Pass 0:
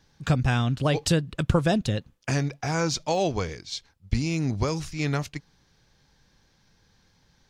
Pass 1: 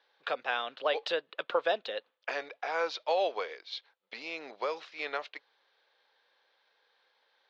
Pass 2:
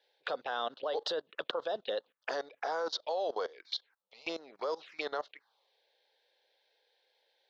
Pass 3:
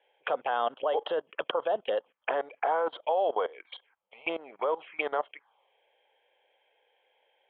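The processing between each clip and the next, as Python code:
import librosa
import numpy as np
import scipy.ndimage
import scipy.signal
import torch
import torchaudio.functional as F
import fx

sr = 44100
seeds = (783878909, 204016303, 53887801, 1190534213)

y1 = scipy.signal.sosfilt(scipy.signal.ellip(3, 1.0, 60, [490.0, 3800.0], 'bandpass', fs=sr, output='sos'), x)
y1 = y1 * librosa.db_to_amplitude(-2.0)
y2 = fx.level_steps(y1, sr, step_db=20)
y2 = fx.env_phaser(y2, sr, low_hz=200.0, high_hz=2400.0, full_db=-40.0)
y2 = y2 * librosa.db_to_amplitude(8.5)
y3 = scipy.signal.sosfilt(scipy.signal.cheby1(6, 6, 3300.0, 'lowpass', fs=sr, output='sos'), y2)
y3 = y3 * librosa.db_to_amplitude(9.0)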